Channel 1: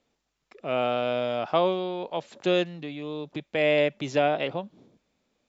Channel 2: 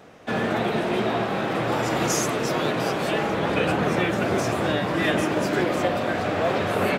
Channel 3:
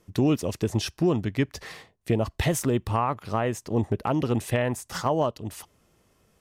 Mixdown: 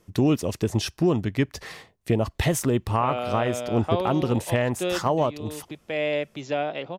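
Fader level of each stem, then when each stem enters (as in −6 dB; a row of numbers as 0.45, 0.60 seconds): −3.5 dB, muted, +1.5 dB; 2.35 s, muted, 0.00 s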